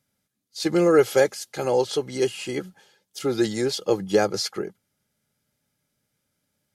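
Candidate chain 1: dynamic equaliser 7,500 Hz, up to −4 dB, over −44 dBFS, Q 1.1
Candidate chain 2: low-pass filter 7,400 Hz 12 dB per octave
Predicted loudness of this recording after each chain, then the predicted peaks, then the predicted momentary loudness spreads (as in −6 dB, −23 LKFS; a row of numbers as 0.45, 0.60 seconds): −23.5, −23.5 LKFS; −7.0, −7.0 dBFS; 14, 15 LU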